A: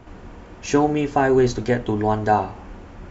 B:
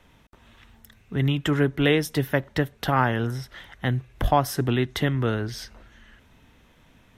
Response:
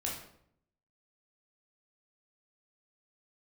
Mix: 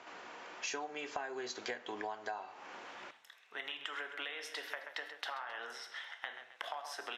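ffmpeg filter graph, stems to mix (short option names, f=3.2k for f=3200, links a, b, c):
-filter_complex "[0:a]tiltshelf=f=970:g=-5.5,volume=-3dB,asplit=2[a][b];[b]volume=-18.5dB[c];[1:a]highpass=780,acompressor=threshold=-33dB:ratio=5,adelay=2400,volume=-5.5dB,asplit=3[d][e][f];[e]volume=-4.5dB[g];[f]volume=-9.5dB[h];[2:a]atrim=start_sample=2205[i];[c][g]amix=inputs=2:normalize=0[j];[j][i]afir=irnorm=-1:irlink=0[k];[h]aecho=0:1:132|264|396|528|660:1|0.39|0.152|0.0593|0.0231[l];[a][d][k][l]amix=inputs=4:normalize=0,highpass=510,lowpass=6k,acompressor=threshold=-37dB:ratio=20"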